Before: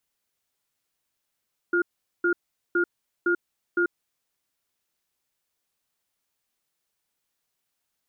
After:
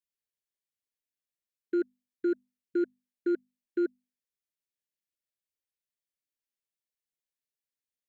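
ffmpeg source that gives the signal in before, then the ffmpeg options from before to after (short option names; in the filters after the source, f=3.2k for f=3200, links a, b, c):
-f lavfi -i "aevalsrc='0.0794*(sin(2*PI*348*t)+sin(2*PI*1420*t))*clip(min(mod(t,0.51),0.09-mod(t,0.51))/0.005,0,1)':d=2.17:s=44100"
-af "afwtdn=0.0112,asuperstop=centerf=1000:order=20:qfactor=1.1,bandreject=f=50:t=h:w=6,bandreject=f=100:t=h:w=6,bandreject=f=150:t=h:w=6,bandreject=f=200:t=h:w=6,bandreject=f=250:t=h:w=6"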